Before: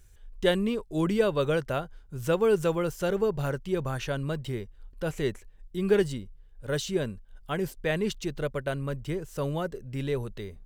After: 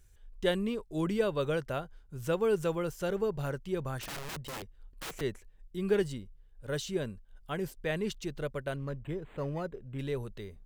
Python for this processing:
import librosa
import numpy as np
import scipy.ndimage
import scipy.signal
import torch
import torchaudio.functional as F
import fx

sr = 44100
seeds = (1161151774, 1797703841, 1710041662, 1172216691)

y = fx.overflow_wrap(x, sr, gain_db=30.0, at=(3.98, 5.21))
y = fx.resample_linear(y, sr, factor=8, at=(8.76, 9.99))
y = F.gain(torch.from_numpy(y), -5.0).numpy()